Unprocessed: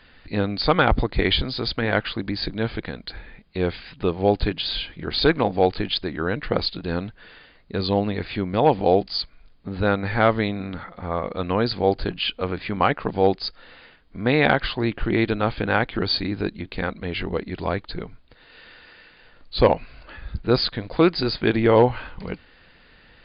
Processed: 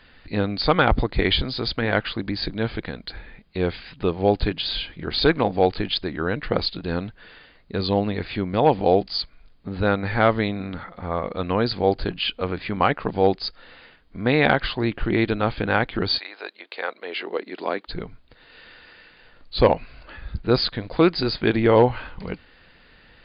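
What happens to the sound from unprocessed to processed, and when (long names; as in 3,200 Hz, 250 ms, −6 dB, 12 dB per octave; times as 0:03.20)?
0:16.17–0:17.87: high-pass filter 670 Hz → 230 Hz 24 dB per octave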